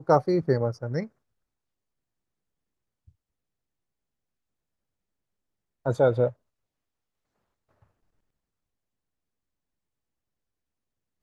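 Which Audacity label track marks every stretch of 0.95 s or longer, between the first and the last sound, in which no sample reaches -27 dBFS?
1.030000	5.860000	silence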